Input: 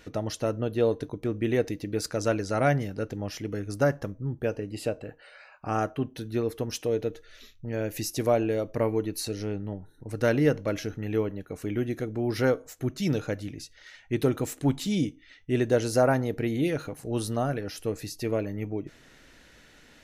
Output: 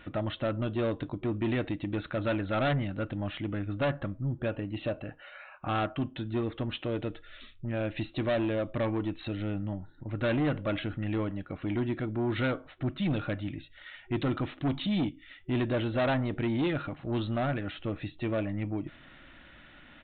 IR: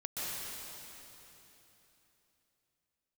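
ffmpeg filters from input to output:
-af "superequalizer=7b=0.316:10b=1.41,aresample=8000,asoftclip=type=tanh:threshold=-26dB,aresample=44100,adynamicequalizer=threshold=0.00316:dfrequency=3100:dqfactor=0.7:tfrequency=3100:tqfactor=0.7:attack=5:release=100:ratio=0.375:range=2.5:mode=boostabove:tftype=highshelf,volume=2dB"

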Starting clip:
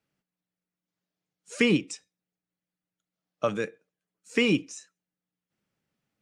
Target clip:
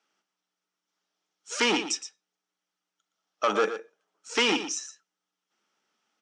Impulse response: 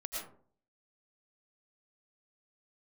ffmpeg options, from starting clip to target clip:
-filter_complex "[0:a]asettb=1/sr,asplit=3[link_01][link_02][link_03];[link_01]atrim=end=3.494[link_04];[link_02]atrim=start=3.49:end=4.34,asetpts=PTS-STARTPTS,afade=type=in:duration=0.004:curve=qsin,afade=type=out:start_time=0.846:duration=0.004:curve=qsin,equalizer=frequency=610:width_type=o:width=2.6:gain=9.5[link_05];[link_03]atrim=start=4.336[link_06];[link_04][link_05]acrossfade=duration=0.004:curve1=hsin:curve2=qsin[link_07];[link_07][link_06]acrossfade=duration=0.004:curve1=qsin:curve2=hsin,asoftclip=type=tanh:threshold=-23dB,highpass=frequency=270:width=0.5412,highpass=frequency=270:width=1.3066,equalizer=frequency=280:width_type=q:width=4:gain=-5,equalizer=frequency=530:width_type=q:width=4:gain=-5,equalizer=frequency=870:width_type=q:width=4:gain=5,equalizer=frequency=1300:width_type=q:width=4:gain=8,equalizer=frequency=3200:width_type=q:width=4:gain=6,equalizer=frequency=5700:width_type=q:width=4:gain=9,lowpass=frequency=8300:width=0.5412,lowpass=frequency=8300:width=1.3066,aecho=1:1:117:0.282,volume=5dB"

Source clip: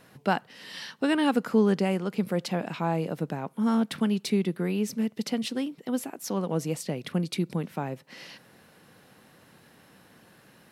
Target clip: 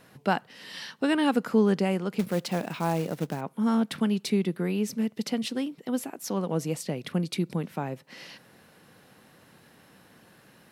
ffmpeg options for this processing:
ffmpeg -i in.wav -filter_complex "[0:a]asettb=1/sr,asplit=3[link_01][link_02][link_03];[link_01]atrim=end=2.194[link_04];[link_02]atrim=start=2.19:end=3.41,asetpts=PTS-STARTPTS,afade=type=in:duration=0.004:curve=qsin,afade=type=out:start_time=1.216:duration=0.004:curve=qsin,acrusher=bits=4:mode=log:mix=0:aa=0.000001[link_05];[link_03]atrim=start=3.406[link_06];[link_04][link_05]acrossfade=duration=0.004:curve1=hsin:curve2=qsin[link_07];[link_07][link_06]acrossfade=duration=0.004:curve1=qsin:curve2=hsin" out.wav

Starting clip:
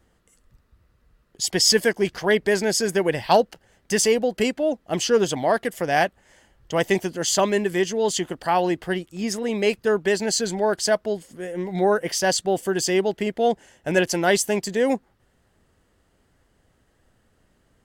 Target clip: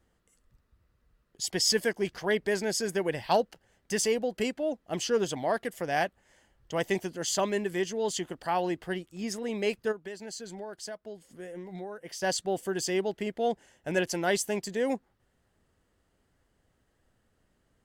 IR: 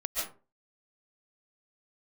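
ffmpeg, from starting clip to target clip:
-filter_complex "[0:a]asplit=3[link_01][link_02][link_03];[link_01]afade=type=out:start_time=9.91:duration=0.02[link_04];[link_02]acompressor=threshold=-30dB:ratio=6,afade=type=in:start_time=9.91:duration=0.02,afade=type=out:start_time=12.21:duration=0.02[link_05];[link_03]afade=type=in:start_time=12.21:duration=0.02[link_06];[link_04][link_05][link_06]amix=inputs=3:normalize=0,volume=-8dB"

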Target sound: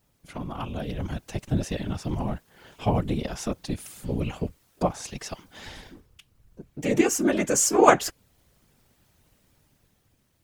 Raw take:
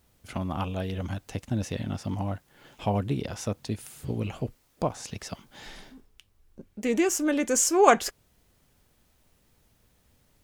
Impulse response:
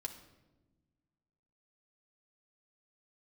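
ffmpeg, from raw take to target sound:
-af "afftfilt=real='hypot(re,im)*cos(2*PI*random(0))':imag='hypot(re,im)*sin(2*PI*random(1))':win_size=512:overlap=0.75,dynaudnorm=framelen=170:gausssize=11:maxgain=6dB,volume=2.5dB"

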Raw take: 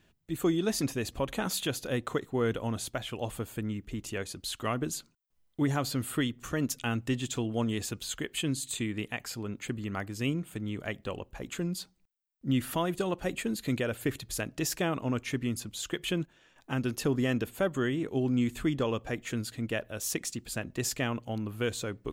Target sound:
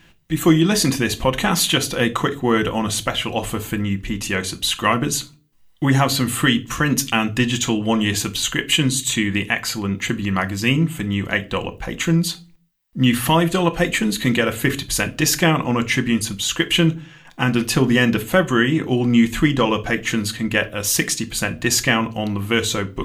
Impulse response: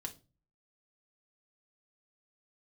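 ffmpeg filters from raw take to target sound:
-filter_complex "[0:a]equalizer=frequency=2400:width=0.5:gain=6,asetrate=42336,aresample=44100,highshelf=frequency=12000:gain=4.5,asplit=2[link_01][link_02];[1:a]atrim=start_sample=2205[link_03];[link_02][link_03]afir=irnorm=-1:irlink=0,volume=5.5dB[link_04];[link_01][link_04]amix=inputs=2:normalize=0,volume=4.5dB"

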